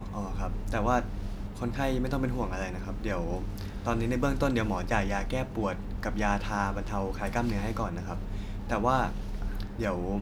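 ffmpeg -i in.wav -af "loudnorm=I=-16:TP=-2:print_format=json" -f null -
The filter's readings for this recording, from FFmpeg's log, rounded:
"input_i" : "-31.6",
"input_tp" : "-10.9",
"input_lra" : "2.0",
"input_thresh" : "-41.6",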